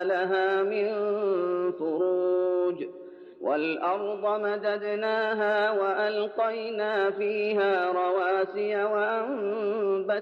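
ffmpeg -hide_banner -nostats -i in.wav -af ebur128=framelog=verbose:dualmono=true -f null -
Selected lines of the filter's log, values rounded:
Integrated loudness:
  I:         -24.0 LUFS
  Threshold: -34.1 LUFS
Loudness range:
  LRA:         1.8 LU
  Threshold: -44.2 LUFS
  LRA low:   -25.2 LUFS
  LRA high:  -23.3 LUFS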